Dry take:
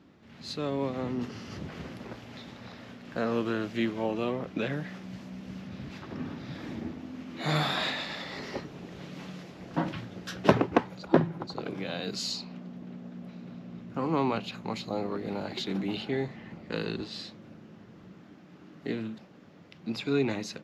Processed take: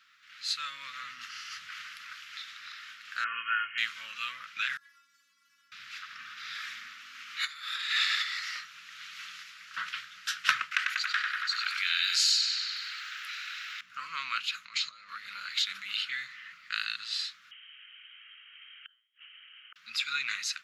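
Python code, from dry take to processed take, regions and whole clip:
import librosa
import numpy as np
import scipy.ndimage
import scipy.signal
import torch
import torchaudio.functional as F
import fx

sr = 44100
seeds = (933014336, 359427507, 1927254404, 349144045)

y = fx.chain(x, sr, fx.brickwall_lowpass(high_hz=3200.0),
    fx.comb(ms=2.8, depth=0.76), at=(3.24, 3.78))
y = fx.chain(y, sr, fx.peak_eq(hz=2800.0, db=-13.0, octaves=1.9),
    fx.stiff_resonator(f0_hz=270.0, decay_s=0.32, stiffness=0.002),
    fx.env_flatten(amount_pct=50), at=(4.77, 5.72))
y = fx.chain(y, sr, fx.low_shelf(hz=92.0, db=-9.5),
    fx.over_compress(threshold_db=-35.0, ratio=-0.5), at=(6.37, 8.23))
y = fx.chain(y, sr, fx.highpass(hz=1400.0, slope=24),
    fx.echo_filtered(ms=96, feedback_pct=76, hz=4700.0, wet_db=-6.0),
    fx.env_flatten(amount_pct=50), at=(10.71, 13.81))
y = fx.chain(y, sr, fx.lowpass(hz=7300.0, slope=24),
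    fx.over_compress(threshold_db=-39.0, ratio=-1.0), at=(14.65, 15.09))
y = fx.chain(y, sr, fx.highpass(hz=410.0, slope=24),
    fx.gate_flip(shuts_db=-39.0, range_db=-37),
    fx.freq_invert(carrier_hz=3500), at=(17.51, 19.76))
y = scipy.signal.sosfilt(scipy.signal.ellip(4, 1.0, 40, 1300.0, 'highpass', fs=sr, output='sos'), y)
y = fx.dynamic_eq(y, sr, hz=8700.0, q=1.5, threshold_db=-58.0, ratio=4.0, max_db=4)
y = y * 10.0 ** (7.5 / 20.0)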